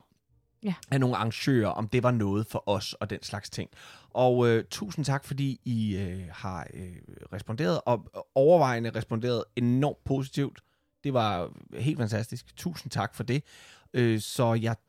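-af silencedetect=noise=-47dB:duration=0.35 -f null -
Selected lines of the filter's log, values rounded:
silence_start: 0.00
silence_end: 0.63 | silence_duration: 0.63
silence_start: 10.59
silence_end: 11.04 | silence_duration: 0.45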